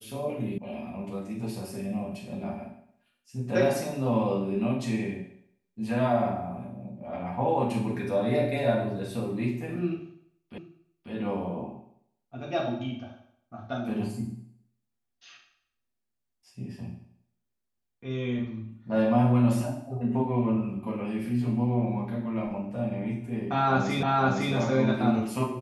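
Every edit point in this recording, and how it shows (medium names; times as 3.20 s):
0.58 s: sound stops dead
10.58 s: repeat of the last 0.54 s
24.03 s: repeat of the last 0.51 s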